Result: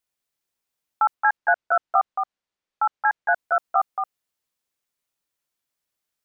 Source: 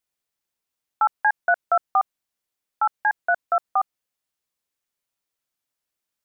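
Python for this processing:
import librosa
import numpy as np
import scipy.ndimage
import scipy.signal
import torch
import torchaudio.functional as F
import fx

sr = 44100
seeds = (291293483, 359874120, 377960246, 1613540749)

y = fx.air_absorb(x, sr, metres=100.0, at=(1.14, 3.32), fade=0.02)
y = y + 10.0 ** (-5.5 / 20.0) * np.pad(y, (int(223 * sr / 1000.0), 0))[:len(y)]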